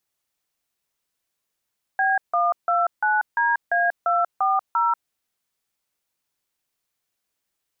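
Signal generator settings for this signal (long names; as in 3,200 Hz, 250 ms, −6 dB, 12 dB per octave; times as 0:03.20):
touch tones "B129DA240", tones 188 ms, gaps 157 ms, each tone −20 dBFS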